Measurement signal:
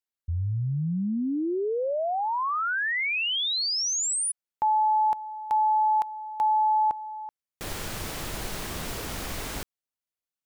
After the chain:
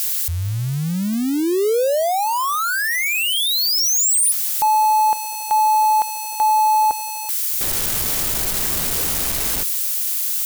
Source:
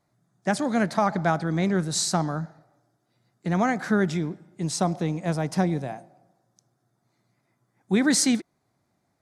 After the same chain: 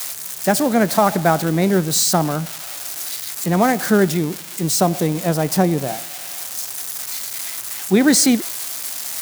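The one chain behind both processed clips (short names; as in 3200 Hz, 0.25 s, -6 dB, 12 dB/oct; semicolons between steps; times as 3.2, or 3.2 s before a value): switching spikes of -20.5 dBFS; dynamic EQ 470 Hz, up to +5 dB, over -37 dBFS, Q 0.96; gain +5 dB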